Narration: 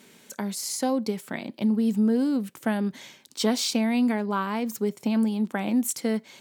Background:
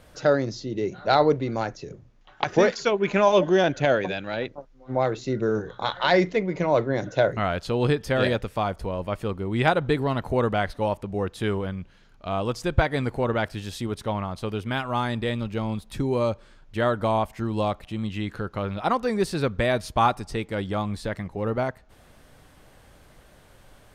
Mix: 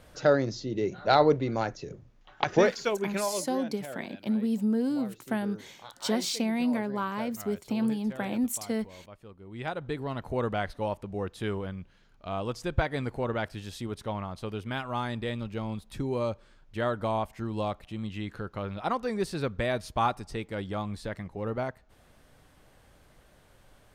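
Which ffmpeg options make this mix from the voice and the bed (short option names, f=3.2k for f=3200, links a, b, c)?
-filter_complex "[0:a]adelay=2650,volume=-4.5dB[a];[1:a]volume=12.5dB,afade=t=out:st=2.51:d=0.96:silence=0.11885,afade=t=in:st=9.37:d=1.13:silence=0.188365[b];[a][b]amix=inputs=2:normalize=0"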